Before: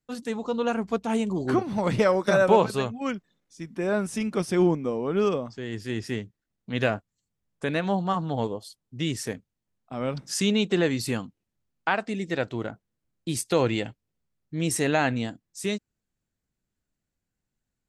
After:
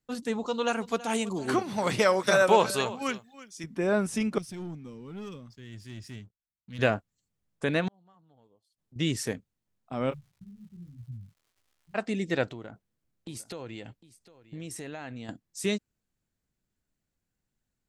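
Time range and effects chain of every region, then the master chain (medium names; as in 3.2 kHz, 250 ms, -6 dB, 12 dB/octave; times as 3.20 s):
0.46–3.64 s: tilt EQ +2.5 dB/octave + delay 327 ms -17.5 dB
4.38–6.79 s: amplifier tone stack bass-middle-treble 6-0-2 + waveshaping leveller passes 2
7.88–8.96 s: inverted gate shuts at -32 dBFS, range -33 dB + compression 2.5:1, threshold -56 dBFS
10.10–11.94 s: inverse Chebyshev low-pass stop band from 730 Hz, stop band 80 dB + crackle 170 per s -52 dBFS + detune thickener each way 50 cents
12.50–15.29 s: compression 5:1, threshold -38 dBFS + delay 754 ms -17.5 dB
whole clip: none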